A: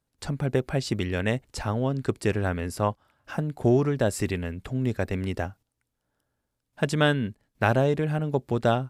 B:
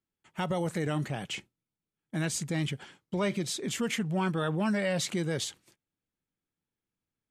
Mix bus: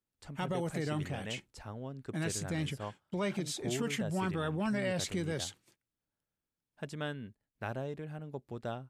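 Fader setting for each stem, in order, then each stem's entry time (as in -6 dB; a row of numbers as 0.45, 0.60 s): -16.5, -4.5 dB; 0.00, 0.00 s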